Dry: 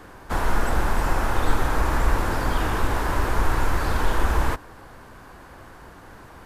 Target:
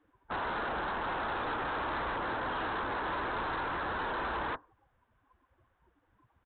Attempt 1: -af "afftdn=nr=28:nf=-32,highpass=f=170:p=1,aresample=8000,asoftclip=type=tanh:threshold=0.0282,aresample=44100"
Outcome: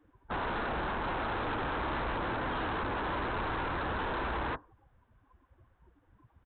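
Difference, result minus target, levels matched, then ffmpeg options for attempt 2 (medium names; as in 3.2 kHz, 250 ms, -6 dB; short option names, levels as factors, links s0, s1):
125 Hz band +6.5 dB
-af "afftdn=nr=28:nf=-32,highpass=f=550:p=1,aresample=8000,asoftclip=type=tanh:threshold=0.0282,aresample=44100"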